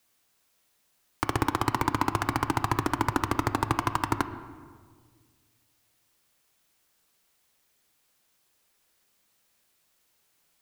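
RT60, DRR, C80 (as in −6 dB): 1.8 s, 10.0 dB, 13.5 dB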